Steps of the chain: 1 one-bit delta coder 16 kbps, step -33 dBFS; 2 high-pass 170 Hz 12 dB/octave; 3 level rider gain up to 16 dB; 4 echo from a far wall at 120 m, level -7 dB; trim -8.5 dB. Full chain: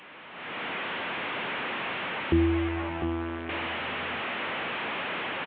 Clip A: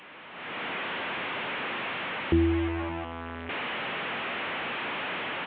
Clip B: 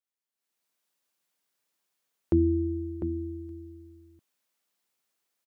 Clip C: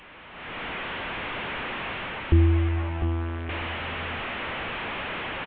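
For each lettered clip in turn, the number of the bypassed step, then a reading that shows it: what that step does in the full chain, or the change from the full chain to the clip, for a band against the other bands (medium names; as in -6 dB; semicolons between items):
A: 4, echo-to-direct -9.0 dB to none; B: 1, crest factor change +2.5 dB; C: 2, 125 Hz band +10.0 dB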